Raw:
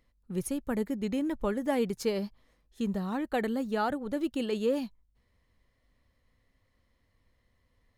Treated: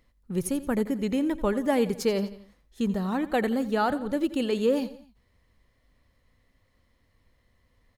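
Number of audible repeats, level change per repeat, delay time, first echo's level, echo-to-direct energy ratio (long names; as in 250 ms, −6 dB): 3, −6.0 dB, 86 ms, −16.0 dB, −15.0 dB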